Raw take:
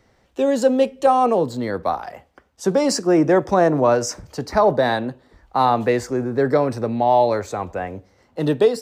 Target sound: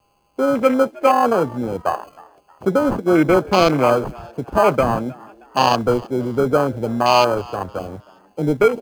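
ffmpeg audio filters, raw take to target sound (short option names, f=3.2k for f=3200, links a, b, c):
-filter_complex "[0:a]aeval=exprs='val(0)+0.00398*sin(2*PI*810*n/s)':c=same,acrusher=samples=24:mix=1:aa=0.000001,afwtdn=0.0708,acrusher=bits=10:mix=0:aa=0.000001,asplit=4[a][b][c][d];[b]adelay=314,afreqshift=100,volume=-23dB[e];[c]adelay=628,afreqshift=200,volume=-31.4dB[f];[d]adelay=942,afreqshift=300,volume=-39.8dB[g];[a][e][f][g]amix=inputs=4:normalize=0,volume=1.5dB"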